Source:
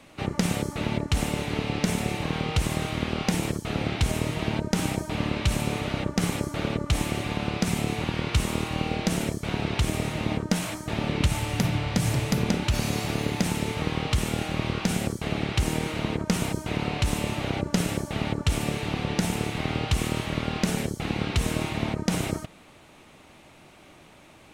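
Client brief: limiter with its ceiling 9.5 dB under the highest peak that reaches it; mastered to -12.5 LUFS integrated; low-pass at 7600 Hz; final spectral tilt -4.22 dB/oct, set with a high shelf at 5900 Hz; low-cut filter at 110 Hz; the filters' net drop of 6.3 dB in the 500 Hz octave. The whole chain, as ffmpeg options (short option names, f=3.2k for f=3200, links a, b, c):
-af "highpass=110,lowpass=7.6k,equalizer=f=500:t=o:g=-8.5,highshelf=f=5.9k:g=6,volume=18dB,alimiter=limit=-0.5dB:level=0:latency=1"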